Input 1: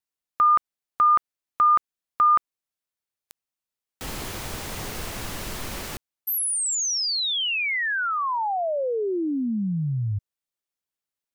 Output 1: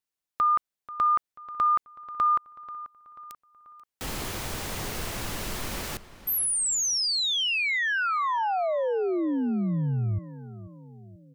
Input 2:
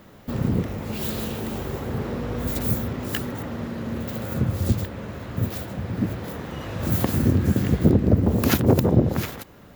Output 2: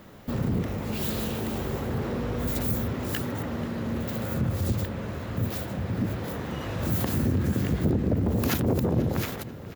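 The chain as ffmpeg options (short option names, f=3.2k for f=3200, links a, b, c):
-filter_complex "[0:a]acompressor=threshold=-22dB:ratio=2.5:attack=0.61:release=50:knee=6:detection=peak,asplit=2[a][b];[b]adelay=487,lowpass=f=4.2k:p=1,volume=-16dB,asplit=2[c][d];[d]adelay=487,lowpass=f=4.2k:p=1,volume=0.52,asplit=2[e][f];[f]adelay=487,lowpass=f=4.2k:p=1,volume=0.52,asplit=2[g][h];[h]adelay=487,lowpass=f=4.2k:p=1,volume=0.52,asplit=2[i][j];[j]adelay=487,lowpass=f=4.2k:p=1,volume=0.52[k];[a][c][e][g][i][k]amix=inputs=6:normalize=0"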